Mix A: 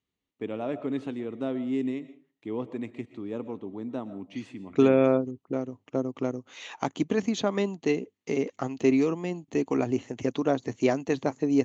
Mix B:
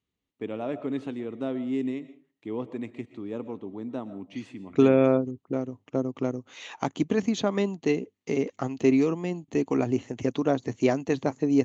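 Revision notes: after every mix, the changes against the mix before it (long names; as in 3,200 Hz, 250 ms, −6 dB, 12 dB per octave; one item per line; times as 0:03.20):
second voice: add low-shelf EQ 180 Hz +4.5 dB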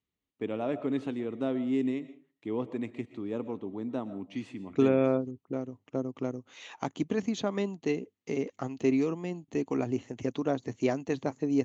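second voice −5.0 dB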